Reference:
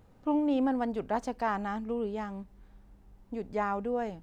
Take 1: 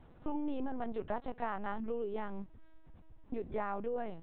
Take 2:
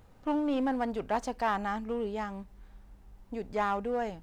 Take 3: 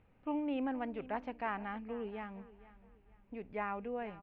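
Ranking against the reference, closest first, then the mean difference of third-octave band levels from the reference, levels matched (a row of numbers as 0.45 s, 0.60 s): 2, 3, 1; 2.5 dB, 3.5 dB, 5.0 dB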